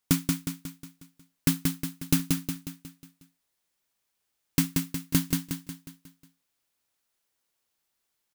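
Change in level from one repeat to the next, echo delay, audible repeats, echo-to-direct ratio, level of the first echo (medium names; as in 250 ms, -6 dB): -6.0 dB, 181 ms, 6, -2.5 dB, -3.5 dB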